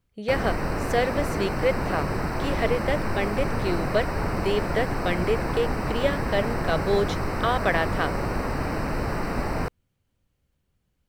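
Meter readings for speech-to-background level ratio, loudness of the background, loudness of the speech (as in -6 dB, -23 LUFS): 1.0 dB, -28.5 LUFS, -27.5 LUFS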